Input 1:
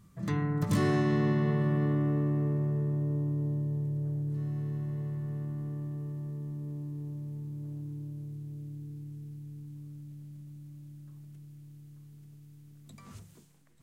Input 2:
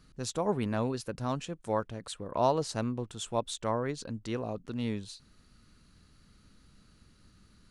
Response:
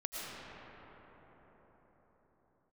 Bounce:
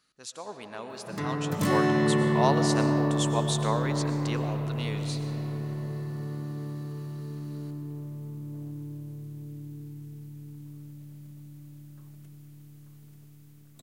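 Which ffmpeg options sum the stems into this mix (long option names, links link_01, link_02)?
-filter_complex "[0:a]lowpass=frequency=2100:poles=1,aemphasis=mode=production:type=bsi,adelay=900,volume=-3dB,asplit=2[link_01][link_02];[link_02]volume=-13.5dB[link_03];[1:a]highpass=frequency=1200:poles=1,volume=-5.5dB,asplit=2[link_04][link_05];[link_05]volume=-5dB[link_06];[2:a]atrim=start_sample=2205[link_07];[link_03][link_06]amix=inputs=2:normalize=0[link_08];[link_08][link_07]afir=irnorm=-1:irlink=0[link_09];[link_01][link_04][link_09]amix=inputs=3:normalize=0,dynaudnorm=framelen=300:gausssize=9:maxgain=10dB"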